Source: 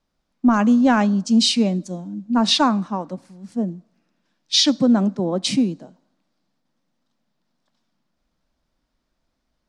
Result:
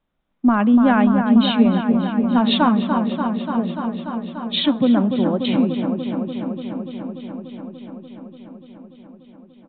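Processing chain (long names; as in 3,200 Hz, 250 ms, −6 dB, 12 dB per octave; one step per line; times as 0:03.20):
delay with a low-pass on its return 292 ms, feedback 80%, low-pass 1,900 Hz, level −6 dB
downsampling to 8,000 Hz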